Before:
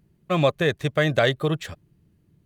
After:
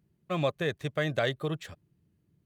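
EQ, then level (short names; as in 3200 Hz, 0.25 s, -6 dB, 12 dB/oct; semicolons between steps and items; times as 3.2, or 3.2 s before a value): HPF 54 Hz; -8.5 dB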